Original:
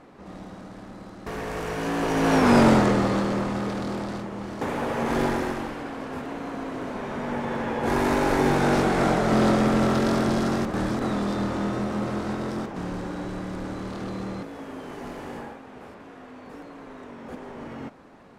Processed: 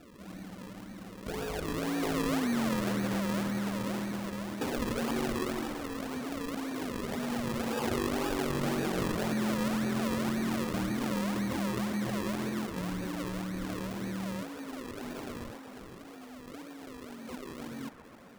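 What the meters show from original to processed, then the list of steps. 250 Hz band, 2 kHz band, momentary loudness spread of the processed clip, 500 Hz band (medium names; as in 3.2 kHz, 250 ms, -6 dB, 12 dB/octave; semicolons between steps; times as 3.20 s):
-7.0 dB, -8.0 dB, 15 LU, -10.0 dB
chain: spectral contrast enhancement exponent 1.8; low-pass that closes with the level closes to 750 Hz, closed at -17 dBFS; compression, threshold -25 dBFS, peak gain reduction 11 dB; decimation with a swept rate 41×, swing 100% 1.9 Hz; feedback echo behind a band-pass 132 ms, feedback 80%, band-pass 1.1 kHz, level -10 dB; trim -3.5 dB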